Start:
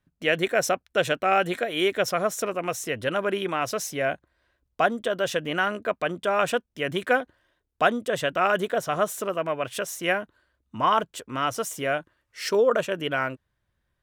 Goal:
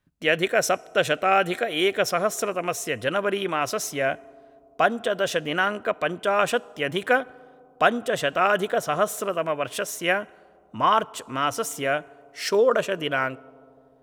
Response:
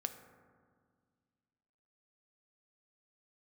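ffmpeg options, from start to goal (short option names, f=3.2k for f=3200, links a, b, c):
-filter_complex "[0:a]asplit=2[a][b];[b]highpass=f=450:p=1[c];[1:a]atrim=start_sample=2205,asetrate=25137,aresample=44100[d];[c][d]afir=irnorm=-1:irlink=0,volume=-12.5dB[e];[a][e]amix=inputs=2:normalize=0"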